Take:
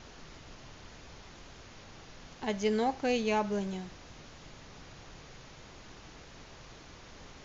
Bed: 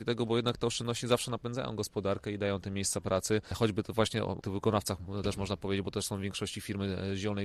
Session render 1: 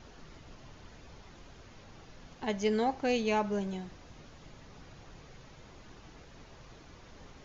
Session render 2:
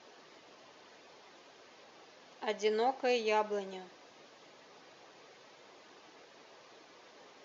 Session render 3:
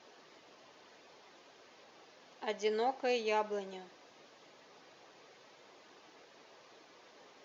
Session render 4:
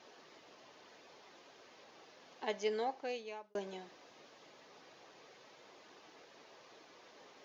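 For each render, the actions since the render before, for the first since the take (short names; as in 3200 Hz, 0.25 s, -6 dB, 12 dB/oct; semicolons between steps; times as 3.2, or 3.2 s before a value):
denoiser 6 dB, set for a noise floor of -52 dBFS
Chebyshev band-pass 430–5400 Hz, order 2; notch 1400 Hz, Q 21
gain -2 dB
2.45–3.55 fade out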